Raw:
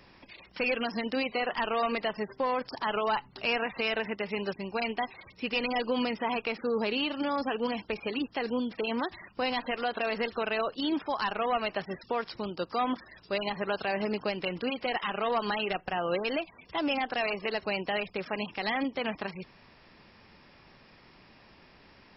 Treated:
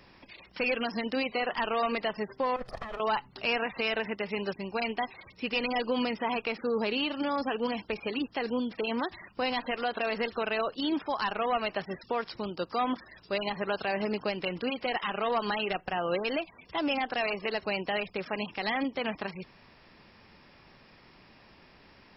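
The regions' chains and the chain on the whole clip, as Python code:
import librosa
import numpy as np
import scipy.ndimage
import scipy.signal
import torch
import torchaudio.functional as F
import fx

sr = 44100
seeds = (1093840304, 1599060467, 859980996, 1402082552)

y = fx.chain(x, sr, fx.lower_of_two(delay_ms=1.6),
    fx.lowpass(hz=1300.0, slope=6),
    fx.over_compress(threshold_db=-38.0, ratio=-1.0), at=(2.56, 3.0))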